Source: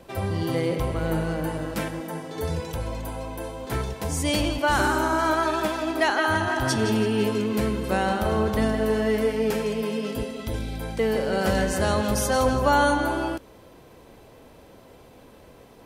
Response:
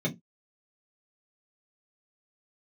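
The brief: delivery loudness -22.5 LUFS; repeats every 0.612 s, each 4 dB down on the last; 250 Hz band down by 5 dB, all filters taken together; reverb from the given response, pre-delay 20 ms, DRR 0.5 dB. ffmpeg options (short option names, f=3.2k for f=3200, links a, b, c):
-filter_complex "[0:a]equalizer=f=250:t=o:g=-6.5,aecho=1:1:612|1224|1836|2448|3060|3672|4284|4896|5508:0.631|0.398|0.25|0.158|0.0994|0.0626|0.0394|0.0249|0.0157,asplit=2[a][b];[1:a]atrim=start_sample=2205,adelay=20[c];[b][c]afir=irnorm=-1:irlink=0,volume=-8dB[d];[a][d]amix=inputs=2:normalize=0,volume=-3.5dB"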